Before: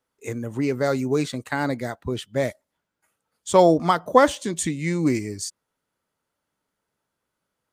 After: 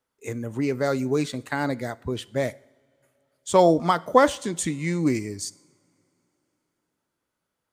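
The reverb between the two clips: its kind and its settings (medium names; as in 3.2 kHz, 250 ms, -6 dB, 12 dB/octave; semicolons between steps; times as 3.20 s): two-slope reverb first 0.7 s, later 3.5 s, from -19 dB, DRR 19.5 dB; trim -1.5 dB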